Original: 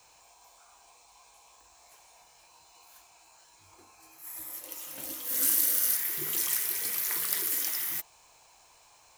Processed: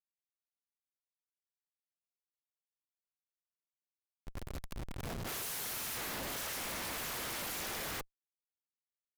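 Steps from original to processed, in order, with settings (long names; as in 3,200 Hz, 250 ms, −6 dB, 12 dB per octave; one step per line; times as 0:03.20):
sub-harmonics by changed cycles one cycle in 2, inverted
comparator with hysteresis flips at −32 dBFS
level −5.5 dB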